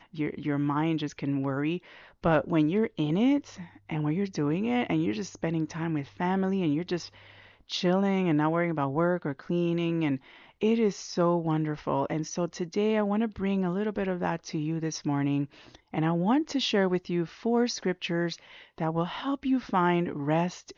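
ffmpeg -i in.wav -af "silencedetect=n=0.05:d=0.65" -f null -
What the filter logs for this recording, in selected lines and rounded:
silence_start: 6.96
silence_end: 7.73 | silence_duration: 0.77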